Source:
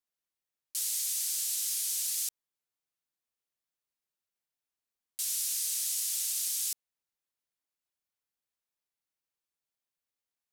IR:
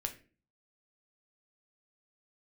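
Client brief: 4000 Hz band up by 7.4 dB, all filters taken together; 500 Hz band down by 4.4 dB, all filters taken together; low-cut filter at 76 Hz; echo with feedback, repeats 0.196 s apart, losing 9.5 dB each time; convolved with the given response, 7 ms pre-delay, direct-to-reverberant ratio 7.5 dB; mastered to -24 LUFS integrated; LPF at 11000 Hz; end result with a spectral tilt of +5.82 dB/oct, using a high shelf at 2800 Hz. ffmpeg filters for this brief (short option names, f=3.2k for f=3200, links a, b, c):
-filter_complex "[0:a]highpass=76,lowpass=11k,equalizer=f=500:t=o:g=-6.5,highshelf=f=2.8k:g=4,equalizer=f=4k:t=o:g=6,aecho=1:1:196|392|588|784:0.335|0.111|0.0365|0.012,asplit=2[a][b];[1:a]atrim=start_sample=2205,adelay=7[c];[b][c]afir=irnorm=-1:irlink=0,volume=-8dB[d];[a][d]amix=inputs=2:normalize=0,volume=1.5dB"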